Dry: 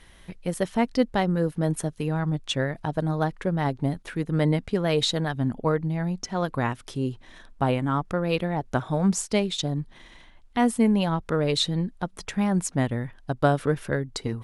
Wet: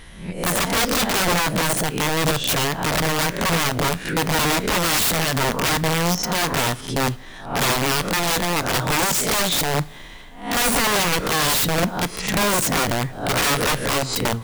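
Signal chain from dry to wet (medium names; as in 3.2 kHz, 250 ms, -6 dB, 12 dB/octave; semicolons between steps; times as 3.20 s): reverse spectral sustain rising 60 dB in 0.45 s; integer overflow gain 22 dB; two-slope reverb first 0.3 s, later 2.9 s, from -21 dB, DRR 15 dB; trim +7.5 dB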